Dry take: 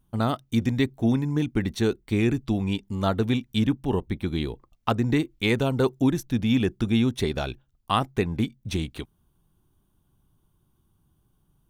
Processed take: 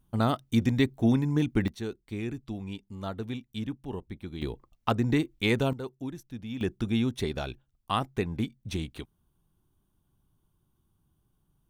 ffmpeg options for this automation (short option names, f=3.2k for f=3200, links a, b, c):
-af "asetnsamples=n=441:p=0,asendcmd='1.68 volume volume -11.5dB;4.42 volume volume -2.5dB;5.73 volume volume -15dB;6.61 volume volume -5dB',volume=-1dB"